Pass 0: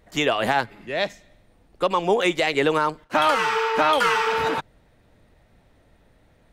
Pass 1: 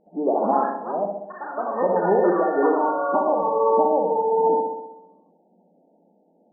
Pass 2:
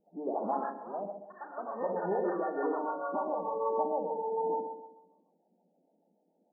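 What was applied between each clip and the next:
FFT band-pass 170–920 Hz; flutter echo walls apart 11.1 m, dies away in 0.96 s; echoes that change speed 0.129 s, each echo +4 st, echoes 3, each echo -6 dB
harmonic tremolo 6.7 Hz, depth 70%, crossover 480 Hz; gain -9 dB

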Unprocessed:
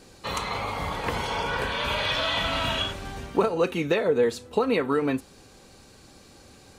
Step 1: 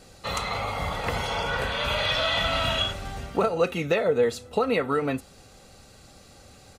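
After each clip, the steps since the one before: comb 1.5 ms, depth 41%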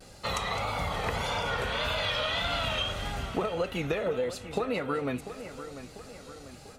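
compressor, threshold -27 dBFS, peak gain reduction 10 dB; vibrato 1.7 Hz 82 cents; split-band echo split 2800 Hz, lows 0.694 s, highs 0.211 s, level -12 dB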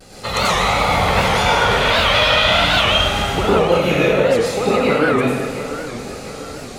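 reverb RT60 1.3 s, pre-delay 83 ms, DRR -8.5 dB; record warp 78 rpm, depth 160 cents; gain +7 dB

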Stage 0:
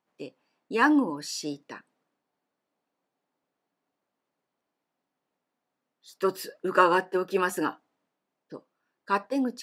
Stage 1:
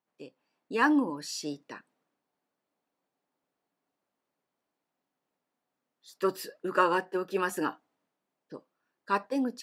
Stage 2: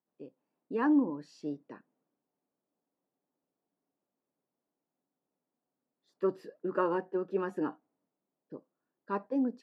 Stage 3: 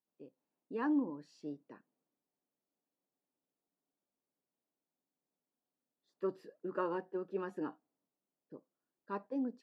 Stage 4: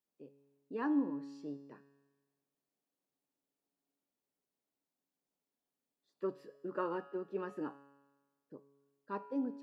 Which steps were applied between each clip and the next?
AGC gain up to 5 dB; gain -7 dB
band-pass 240 Hz, Q 0.55
dynamic EQ 4000 Hz, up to +4 dB, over -56 dBFS, Q 1.5; gain -6.5 dB
resonator 140 Hz, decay 1.3 s, mix 70%; gain +9 dB

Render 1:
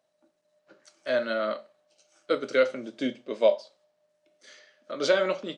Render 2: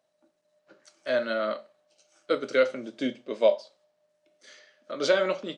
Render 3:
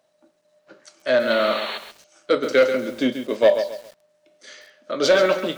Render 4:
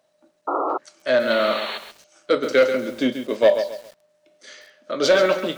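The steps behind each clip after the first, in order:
nothing audible
soft clip -16.5 dBFS, distortion -15 dB; painted sound noise, 1.3–1.78, 370–4500 Hz -39 dBFS; lo-fi delay 0.135 s, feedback 35%, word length 8-bit, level -9 dB; gain +8.5 dB
painted sound noise, 0.47–0.78, 270–1400 Hz -23 dBFS

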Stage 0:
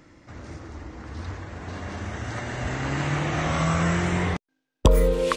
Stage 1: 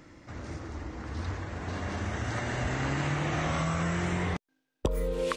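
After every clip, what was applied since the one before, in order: compressor 8:1, threshold -26 dBFS, peak gain reduction 15 dB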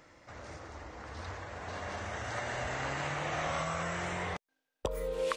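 resonant low shelf 410 Hz -7.5 dB, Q 1.5; gain -2.5 dB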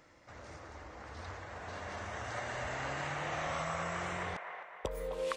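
band-limited delay 0.261 s, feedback 49%, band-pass 1200 Hz, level -4 dB; gain -3.5 dB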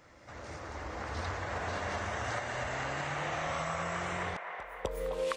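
recorder AGC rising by 7.9 dB/s; pre-echo 0.255 s -17 dB; gain +1.5 dB

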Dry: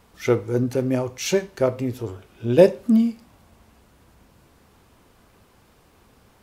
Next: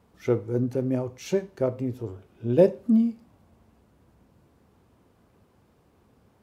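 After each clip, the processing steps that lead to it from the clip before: HPF 68 Hz; tilt shelf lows +5.5 dB; gain -8 dB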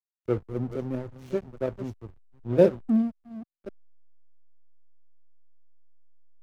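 reverse delay 0.527 s, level -10 dB; backlash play -26.5 dBFS; three-band expander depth 40%; gain -3.5 dB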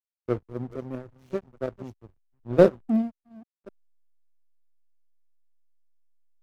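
power-law curve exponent 1.4; gain +4 dB

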